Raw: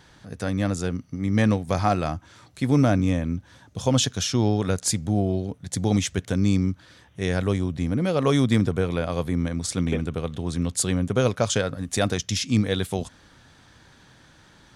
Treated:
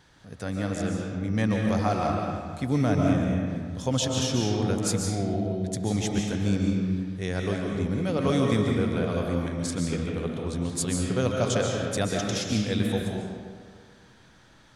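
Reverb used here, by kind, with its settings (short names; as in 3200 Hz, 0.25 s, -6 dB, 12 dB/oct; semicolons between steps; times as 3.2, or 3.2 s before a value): digital reverb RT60 1.8 s, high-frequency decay 0.6×, pre-delay 0.1 s, DRR -0.5 dB; gain -5.5 dB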